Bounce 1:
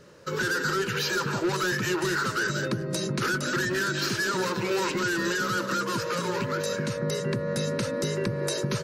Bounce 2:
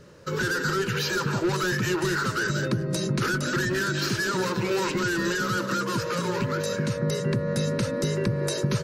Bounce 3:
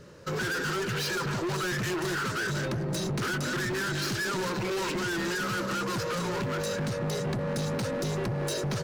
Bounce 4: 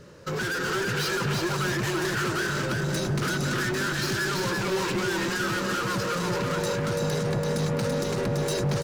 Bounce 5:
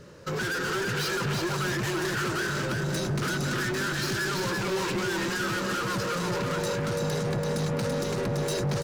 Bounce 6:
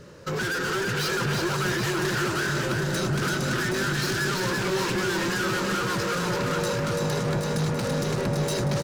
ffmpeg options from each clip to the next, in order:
-af "lowshelf=f=160:g=8.5"
-af "volume=28dB,asoftclip=hard,volume=-28dB"
-af "aecho=1:1:335|670|1005|1340:0.668|0.18|0.0487|0.0132,volume=1.5dB"
-af "asoftclip=type=tanh:threshold=-22dB"
-af "aecho=1:1:772:0.422,volume=2dB"

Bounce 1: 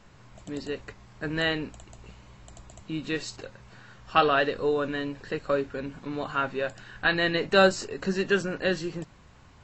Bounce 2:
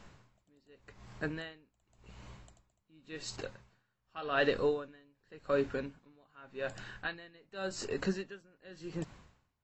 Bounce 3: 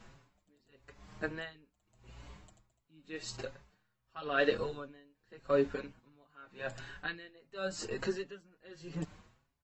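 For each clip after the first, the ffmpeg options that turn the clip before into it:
-af "aeval=exprs='val(0)*pow(10,-33*(0.5-0.5*cos(2*PI*0.88*n/s))/20)':c=same"
-filter_complex "[0:a]asplit=2[a][b];[b]adelay=5.8,afreqshift=1.5[c];[a][c]amix=inputs=2:normalize=1,volume=2.5dB"

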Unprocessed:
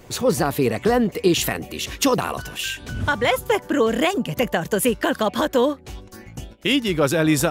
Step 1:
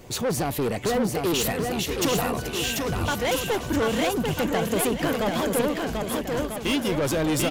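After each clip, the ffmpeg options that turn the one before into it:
-filter_complex "[0:a]equalizer=f=1.5k:w=1.5:g=-3.5,asoftclip=type=tanh:threshold=-21dB,asplit=2[a][b];[b]aecho=0:1:740|1295|1711|2023|2258:0.631|0.398|0.251|0.158|0.1[c];[a][c]amix=inputs=2:normalize=0"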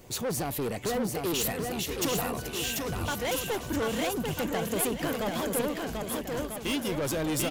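-af "highshelf=f=7.9k:g=6.5,volume=-6dB"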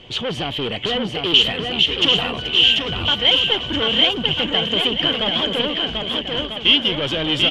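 -af "lowpass=f=3.1k:t=q:w=16,volume=5.5dB"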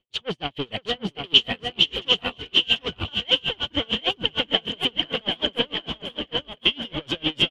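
-filter_complex "[0:a]agate=range=-30dB:threshold=-25dB:ratio=16:detection=peak,asplit=2[a][b];[b]aecho=0:1:519:0.335[c];[a][c]amix=inputs=2:normalize=0,aeval=exprs='val(0)*pow(10,-33*(0.5-0.5*cos(2*PI*6.6*n/s))/20)':c=same"

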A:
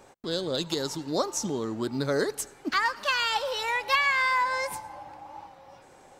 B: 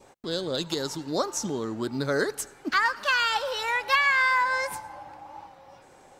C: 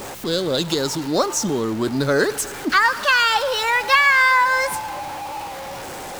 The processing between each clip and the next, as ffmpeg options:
-af "adynamicequalizer=threshold=0.00794:dfrequency=1500:dqfactor=2.9:tfrequency=1500:tqfactor=2.9:attack=5:release=100:ratio=0.375:range=3:mode=boostabove:tftype=bell"
-af "aeval=exprs='val(0)+0.5*0.0188*sgn(val(0))':c=same,volume=6.5dB"

